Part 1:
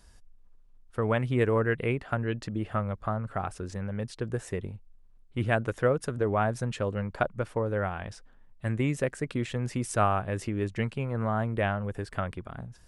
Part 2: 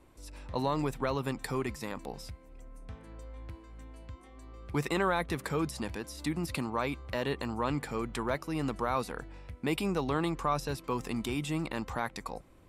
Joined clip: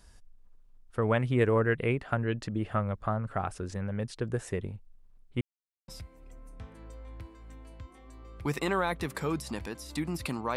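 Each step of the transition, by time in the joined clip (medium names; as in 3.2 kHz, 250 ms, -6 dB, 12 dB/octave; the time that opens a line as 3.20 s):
part 1
5.41–5.88 s: mute
5.88 s: go over to part 2 from 2.17 s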